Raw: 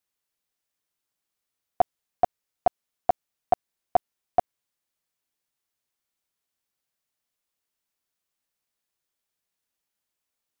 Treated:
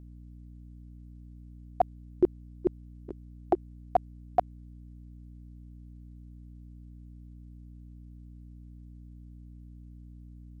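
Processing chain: trilling pitch shifter -12 st, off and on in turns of 75 ms; hum 60 Hz, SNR 10 dB; gain -2.5 dB

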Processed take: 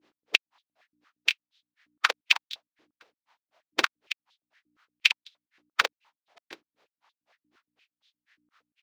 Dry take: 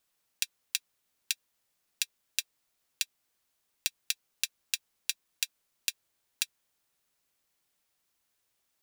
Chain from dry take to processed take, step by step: spectral contrast lowered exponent 0.17; air absorption 240 m; on a send: early reflections 51 ms -3.5 dB, 74 ms -17 dB; on the sum: grains 0.134 s, grains 4/s; hum 60 Hz, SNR 31 dB; in parallel at -10 dB: sample gate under -54 dBFS; on the sum: maximiser +21 dB; stepped high-pass 8.6 Hz 330–3600 Hz; gain -3 dB

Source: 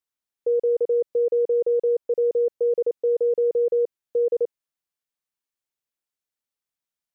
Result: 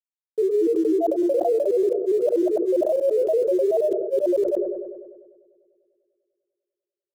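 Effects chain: requantised 8-bit, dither none; grains, grains 20/s, pitch spread up and down by 7 st; on a send: dark delay 99 ms, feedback 77%, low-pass 470 Hz, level -16.5 dB; on the sum: sustainer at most 41 dB/s; gain +1.5 dB

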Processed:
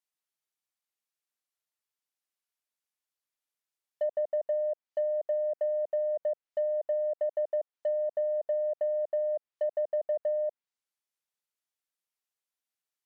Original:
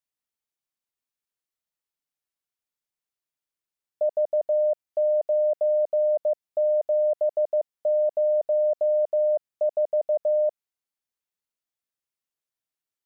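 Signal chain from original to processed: HPF 480 Hz 6 dB/oct; in parallel at -5 dB: soft clip -31.5 dBFS, distortion -11 dB; on the sum: treble ducked by the level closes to 620 Hz, closed at -20 dBFS; gain -4.5 dB

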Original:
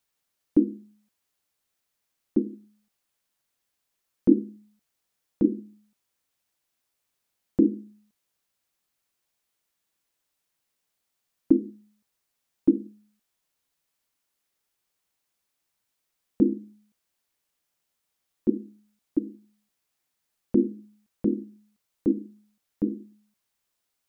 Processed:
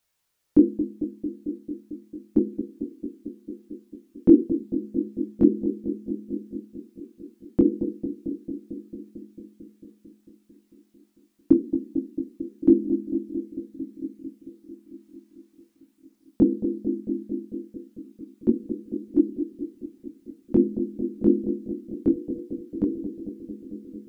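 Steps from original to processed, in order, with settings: on a send: analogue delay 0.223 s, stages 1024, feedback 78%, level -10 dB; on the sum: chorus voices 4, 0.24 Hz, delay 22 ms, depth 1.6 ms; gain +7 dB

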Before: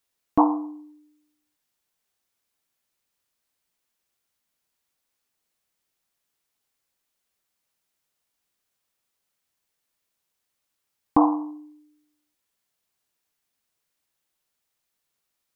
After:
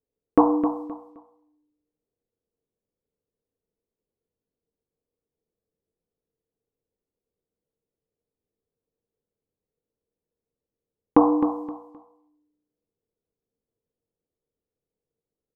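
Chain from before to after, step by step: dynamic EQ 800 Hz, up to -6 dB, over -32 dBFS, Q 1.1; de-hum 60.4 Hz, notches 24; low-pass opened by the level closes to 340 Hz, open at -32 dBFS; bell 460 Hz +14.5 dB 0.35 oct; on a send: feedback echo 0.261 s, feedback 26%, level -9.5 dB; on the sum: gain +4 dB

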